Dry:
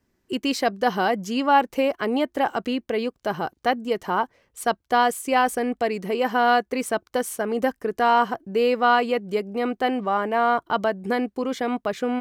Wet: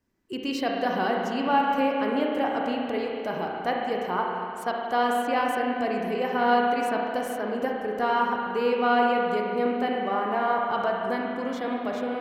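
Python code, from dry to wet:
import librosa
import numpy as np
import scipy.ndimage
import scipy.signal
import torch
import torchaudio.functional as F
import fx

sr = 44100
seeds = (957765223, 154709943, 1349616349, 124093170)

y = fx.dynamic_eq(x, sr, hz=9200.0, q=0.94, threshold_db=-48.0, ratio=4.0, max_db=-6)
y = fx.rev_spring(y, sr, rt60_s=2.6, pass_ms=(33, 56), chirp_ms=20, drr_db=-1.0)
y = y * 10.0 ** (-6.5 / 20.0)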